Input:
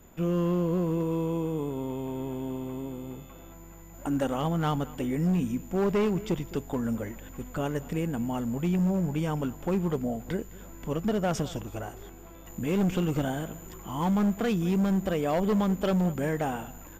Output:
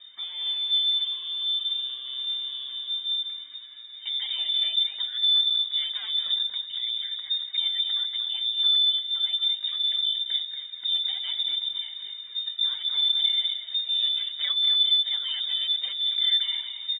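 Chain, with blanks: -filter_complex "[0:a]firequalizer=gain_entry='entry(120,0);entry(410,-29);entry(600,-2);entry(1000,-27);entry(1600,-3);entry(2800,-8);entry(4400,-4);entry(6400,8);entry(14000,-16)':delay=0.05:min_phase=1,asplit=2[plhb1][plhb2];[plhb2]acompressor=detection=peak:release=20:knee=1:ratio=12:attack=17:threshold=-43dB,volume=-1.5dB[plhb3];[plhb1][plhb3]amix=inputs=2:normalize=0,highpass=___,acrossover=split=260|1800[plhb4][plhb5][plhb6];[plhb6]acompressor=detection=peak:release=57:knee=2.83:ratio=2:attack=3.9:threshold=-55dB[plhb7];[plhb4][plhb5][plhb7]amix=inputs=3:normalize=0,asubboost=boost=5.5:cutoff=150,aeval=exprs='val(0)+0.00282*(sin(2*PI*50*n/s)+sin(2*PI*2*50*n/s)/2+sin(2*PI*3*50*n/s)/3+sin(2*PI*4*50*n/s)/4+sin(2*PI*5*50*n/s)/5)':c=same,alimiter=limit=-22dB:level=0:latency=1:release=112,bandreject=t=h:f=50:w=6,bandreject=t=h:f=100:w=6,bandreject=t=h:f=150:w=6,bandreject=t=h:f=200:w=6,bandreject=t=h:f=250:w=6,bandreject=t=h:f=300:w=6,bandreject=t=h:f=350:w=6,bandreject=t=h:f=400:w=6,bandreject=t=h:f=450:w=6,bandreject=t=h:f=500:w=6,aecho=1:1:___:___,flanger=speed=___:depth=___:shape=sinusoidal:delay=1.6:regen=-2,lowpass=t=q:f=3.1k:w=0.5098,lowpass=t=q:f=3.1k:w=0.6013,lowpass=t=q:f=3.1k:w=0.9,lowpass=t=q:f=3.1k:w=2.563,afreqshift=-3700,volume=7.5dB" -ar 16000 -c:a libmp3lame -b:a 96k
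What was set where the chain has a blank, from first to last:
53, 233, 0.447, 0.64, 3.7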